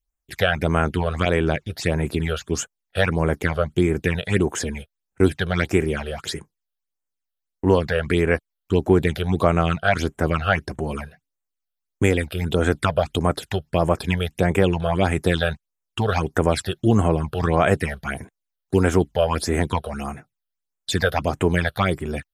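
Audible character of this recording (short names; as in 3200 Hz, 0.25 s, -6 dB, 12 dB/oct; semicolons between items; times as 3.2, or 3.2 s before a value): phasing stages 8, 1.6 Hz, lowest notch 270–4600 Hz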